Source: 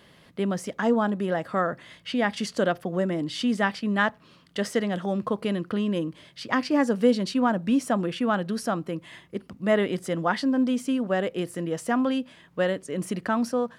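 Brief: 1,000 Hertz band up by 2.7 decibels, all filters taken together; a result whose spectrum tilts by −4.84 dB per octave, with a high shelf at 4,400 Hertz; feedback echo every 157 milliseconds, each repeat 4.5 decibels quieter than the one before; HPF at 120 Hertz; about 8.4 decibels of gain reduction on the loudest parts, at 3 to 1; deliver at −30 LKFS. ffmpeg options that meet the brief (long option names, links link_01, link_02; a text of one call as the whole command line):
ffmpeg -i in.wav -af "highpass=120,equalizer=frequency=1000:width_type=o:gain=4,highshelf=frequency=4400:gain=-7.5,acompressor=threshold=-26dB:ratio=3,aecho=1:1:157|314|471|628|785|942|1099|1256|1413:0.596|0.357|0.214|0.129|0.0772|0.0463|0.0278|0.0167|0.01,volume=-1dB" out.wav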